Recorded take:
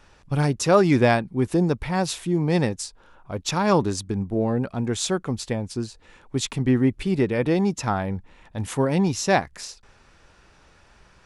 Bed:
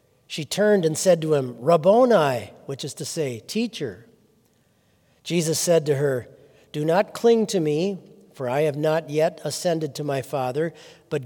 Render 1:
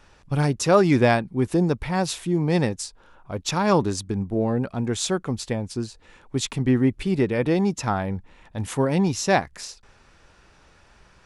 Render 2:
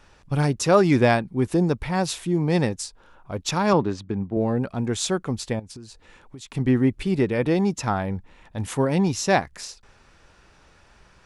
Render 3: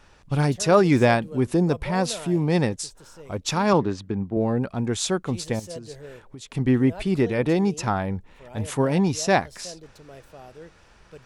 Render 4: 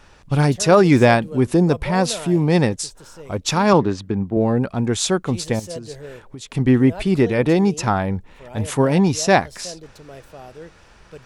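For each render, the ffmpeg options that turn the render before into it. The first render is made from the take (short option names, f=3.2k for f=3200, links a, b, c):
-af anull
-filter_complex "[0:a]asettb=1/sr,asplit=3[a][b][c];[a]atrim=end=3.734[d];[b]atrim=start=3.73:end=4.37,asetpts=PTS-STARTPTS,afade=t=in:d=0.004:c=qsin,afade=t=out:st=0.636:d=0.004:c=qsin,highpass=100,lowpass=3.1k[e];[c]atrim=start=4.366[f];[d][e]acrossfade=d=0.004:c1=hsin:c2=qsin[g];[g][f]acrossfade=d=0.004:c1=qsin:c2=hsin,asettb=1/sr,asplit=3[h][i][j];[h]atrim=end=5.594[k];[i]atrim=start=5.59:end=6.55,asetpts=PTS-STARTPTS,afade=t=in:d=0.004:c=qsin,afade=t=out:st=0.956:d=0.004:c=qsin,acompressor=threshold=-36dB:ratio=12:attack=3.2:release=140:knee=1:detection=peak[l];[j]atrim=start=6.546[m];[k][l]acrossfade=d=0.004:c1=hsin:c2=qsin[n];[n][m]acrossfade=d=0.004:c1=qsin:c2=hsin"
-filter_complex "[1:a]volume=-19.5dB[a];[0:a][a]amix=inputs=2:normalize=0"
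-af "volume=5dB,alimiter=limit=-2dB:level=0:latency=1"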